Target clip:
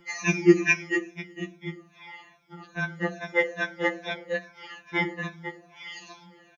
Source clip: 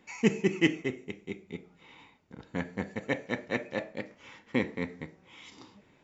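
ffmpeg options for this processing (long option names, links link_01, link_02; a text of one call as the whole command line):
ffmpeg -i in.wav -filter_complex "[0:a]afftfilt=real='re*pow(10,17/40*sin(2*PI*(1.6*log(max(b,1)*sr/1024/100)/log(2)-(-2.6)*(pts-256)/sr)))':imag='im*pow(10,17/40*sin(2*PI*(1.6*log(max(b,1)*sr/1024/100)/log(2)-(-2.6)*(pts-256)/sr)))':win_size=1024:overlap=0.75,acrossover=split=680[link_01][link_02];[link_01]crystalizer=i=5:c=0[link_03];[link_03][link_02]amix=inputs=2:normalize=0,asetrate=40517,aresample=44100,highpass=frequency=420:poles=1,aeval=exprs='val(0)+0.000891*(sin(2*PI*50*n/s)+sin(2*PI*2*50*n/s)/2+sin(2*PI*3*50*n/s)/3+sin(2*PI*4*50*n/s)/4+sin(2*PI*5*50*n/s)/5)':channel_layout=same,afftfilt=real='re*2.83*eq(mod(b,8),0)':imag='im*2.83*eq(mod(b,8),0)':win_size=2048:overlap=0.75,volume=7.5dB" out.wav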